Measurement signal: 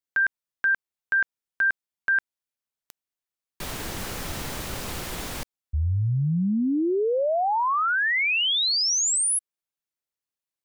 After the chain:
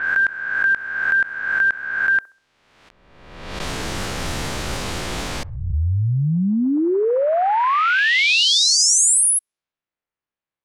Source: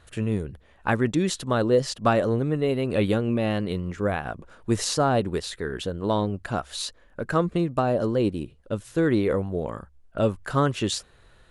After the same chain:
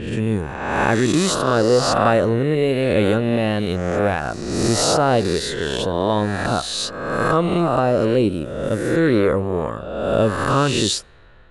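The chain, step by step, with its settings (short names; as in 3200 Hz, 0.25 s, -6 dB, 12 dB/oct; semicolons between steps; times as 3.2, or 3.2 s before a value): spectral swells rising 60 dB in 1.27 s; in parallel at +2.5 dB: limiter -12.5 dBFS; on the sum: low-pass opened by the level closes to 2300 Hz, open at -14.5 dBFS; band-limited delay 65 ms, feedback 35%, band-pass 710 Hz, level -20 dB; gain -3 dB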